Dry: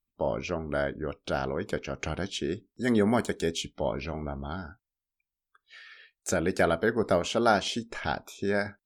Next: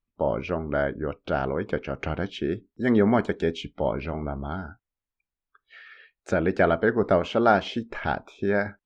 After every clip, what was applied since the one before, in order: low-pass 2.4 kHz 12 dB/octave; trim +4 dB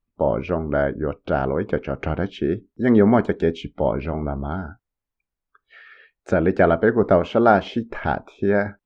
treble shelf 2.1 kHz -9.5 dB; trim +5.5 dB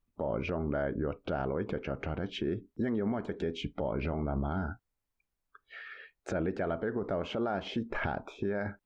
compression 6:1, threshold -24 dBFS, peak gain reduction 14 dB; peak limiter -23.5 dBFS, peak gain reduction 10 dB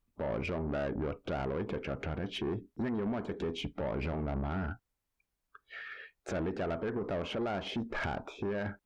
valve stage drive 31 dB, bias 0.2; trim +2 dB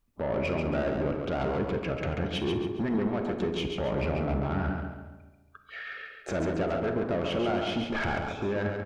feedback delay 138 ms, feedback 38%, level -5 dB; on a send at -8 dB: reverberation RT60 1.2 s, pre-delay 5 ms; on the sum: trim +4 dB

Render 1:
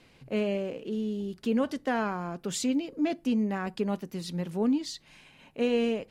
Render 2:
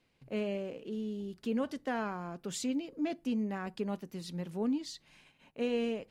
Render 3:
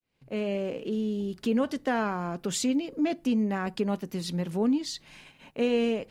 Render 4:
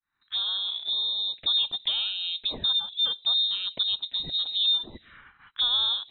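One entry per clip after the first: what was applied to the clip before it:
gate -55 dBFS, range -9 dB; trim -6 dB
fade-in on the opening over 0.69 s; in parallel at -1 dB: compression, threshold -41 dBFS, peak gain reduction 12.5 dB; on the sum: trim +5 dB
frequency inversion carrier 3.9 kHz; touch-sensitive phaser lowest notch 580 Hz, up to 2.1 kHz, full sweep at -26 dBFS; trim +2.5 dB

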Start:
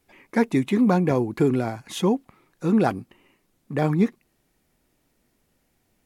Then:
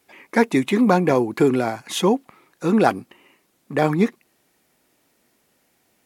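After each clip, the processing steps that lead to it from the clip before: high-pass 370 Hz 6 dB/octave; trim +7 dB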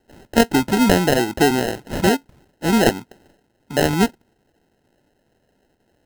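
sample-and-hold 38×; trim +1 dB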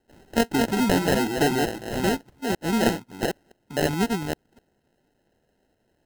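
chunks repeated in reverse 255 ms, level -3 dB; trim -7 dB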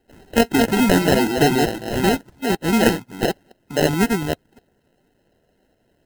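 coarse spectral quantiser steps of 15 dB; trim +6 dB

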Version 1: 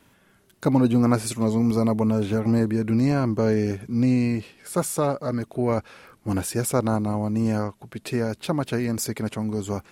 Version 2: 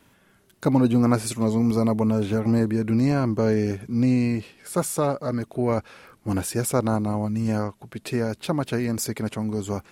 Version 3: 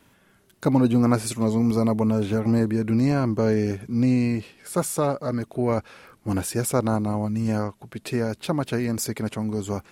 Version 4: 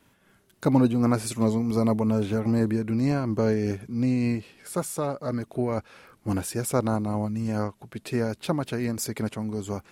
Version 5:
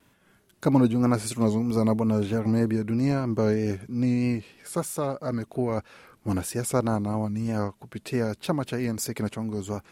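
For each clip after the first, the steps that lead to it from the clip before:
time-frequency box 7.26–7.48 s, 220–1200 Hz -8 dB
no audible change
random flutter of the level, depth 55%
vibrato 3.1 Hz 55 cents

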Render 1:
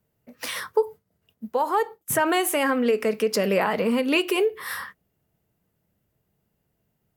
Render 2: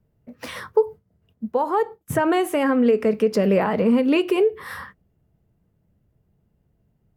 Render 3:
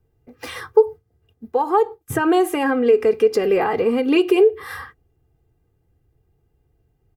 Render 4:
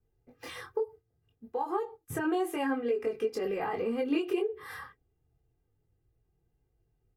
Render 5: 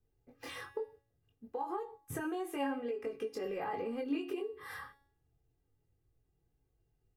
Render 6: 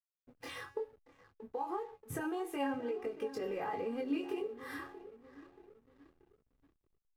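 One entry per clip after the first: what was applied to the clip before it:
tilt EQ -3 dB/octave
comb 2.5 ms, depth 79%
compression 4:1, threshold -17 dBFS, peak gain reduction 8.5 dB; chorus voices 4, 0.29 Hz, delay 22 ms, depth 4.5 ms; trim -7.5 dB
compression 2.5:1, threshold -34 dBFS, peak gain reduction 7 dB; feedback comb 280 Hz, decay 0.6 s, harmonics all, mix 70%; trim +7 dB
feedback echo behind a low-pass 631 ms, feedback 46%, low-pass 2.1 kHz, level -14 dB; hysteresis with a dead band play -58 dBFS

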